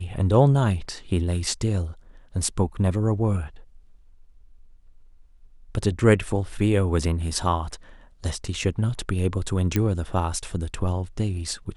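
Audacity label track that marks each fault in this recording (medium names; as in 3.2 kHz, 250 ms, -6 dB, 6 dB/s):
9.760000	9.760000	pop -9 dBFS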